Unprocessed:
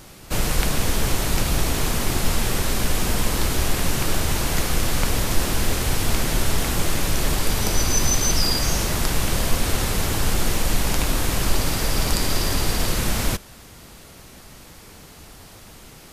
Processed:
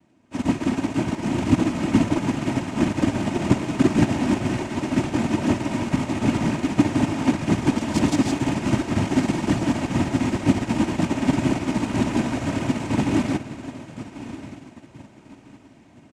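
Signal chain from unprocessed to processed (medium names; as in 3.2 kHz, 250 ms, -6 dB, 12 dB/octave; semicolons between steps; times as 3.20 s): median filter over 9 samples; peaking EQ 180 Hz +12.5 dB 1.1 oct; noise-vocoded speech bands 4; comb 3.2 ms, depth 34%; on a send: echo that smears into a reverb 1208 ms, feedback 64%, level -7 dB; on the sum: spring tank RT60 3.6 s, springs 55 ms, chirp 60 ms, DRR 7.5 dB; in parallel at -7.5 dB: overload inside the chain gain 16 dB; on the sum: phaser 2 Hz, delay 4.9 ms, feedback 21%; upward expansion 2.5:1, over -27 dBFS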